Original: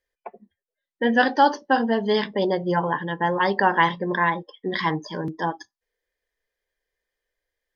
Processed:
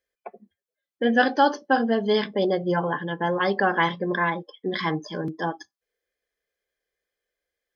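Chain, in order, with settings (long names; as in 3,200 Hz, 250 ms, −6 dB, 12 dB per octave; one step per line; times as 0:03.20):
notch comb filter 940 Hz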